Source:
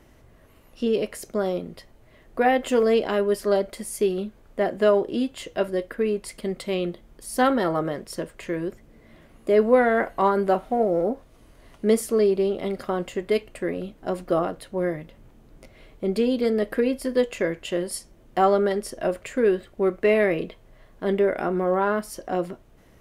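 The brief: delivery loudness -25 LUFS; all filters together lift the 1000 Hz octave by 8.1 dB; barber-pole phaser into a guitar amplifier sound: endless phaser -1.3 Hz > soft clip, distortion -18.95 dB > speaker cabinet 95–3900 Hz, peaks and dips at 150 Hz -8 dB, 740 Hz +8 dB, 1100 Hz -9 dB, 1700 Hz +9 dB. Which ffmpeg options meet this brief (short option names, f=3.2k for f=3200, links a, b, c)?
-filter_complex "[0:a]equalizer=f=1k:t=o:g=5,asplit=2[a][b];[b]afreqshift=-1.3[c];[a][c]amix=inputs=2:normalize=1,asoftclip=threshold=-14dB,highpass=95,equalizer=f=150:t=q:w=4:g=-8,equalizer=f=740:t=q:w=4:g=8,equalizer=f=1.1k:t=q:w=4:g=-9,equalizer=f=1.7k:t=q:w=4:g=9,lowpass=f=3.9k:w=0.5412,lowpass=f=3.9k:w=1.3066,volume=1dB"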